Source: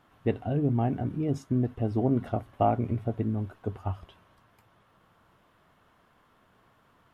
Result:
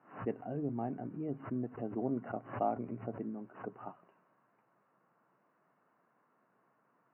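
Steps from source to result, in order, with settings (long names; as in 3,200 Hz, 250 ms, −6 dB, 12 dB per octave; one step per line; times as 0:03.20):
three-way crossover with the lows and the highs turned down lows −14 dB, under 160 Hz, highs −24 dB, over 2,100 Hz
brick-wall band-pass 110–3,000 Hz
background raised ahead of every attack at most 140 dB per second
level −8.5 dB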